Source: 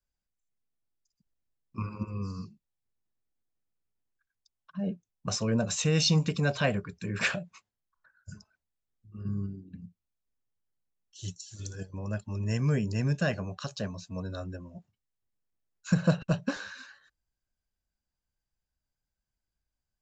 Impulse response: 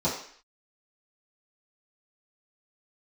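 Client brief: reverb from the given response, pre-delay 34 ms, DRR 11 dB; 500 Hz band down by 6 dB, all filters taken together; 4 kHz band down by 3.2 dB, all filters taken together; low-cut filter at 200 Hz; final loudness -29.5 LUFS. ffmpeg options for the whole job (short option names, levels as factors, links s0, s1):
-filter_complex "[0:a]highpass=200,equalizer=f=500:t=o:g=-7,equalizer=f=4000:t=o:g=-4,asplit=2[s0][s1];[1:a]atrim=start_sample=2205,adelay=34[s2];[s1][s2]afir=irnorm=-1:irlink=0,volume=0.0794[s3];[s0][s3]amix=inputs=2:normalize=0,volume=1.68"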